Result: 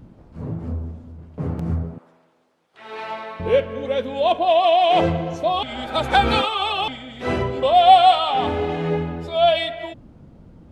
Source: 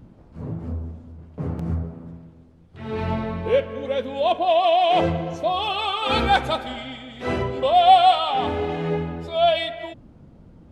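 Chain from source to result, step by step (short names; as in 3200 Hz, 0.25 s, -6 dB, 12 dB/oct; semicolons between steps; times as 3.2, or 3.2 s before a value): 1.98–3.4 HPF 720 Hz 12 dB/oct; 5.63–6.88 reverse; gain +2 dB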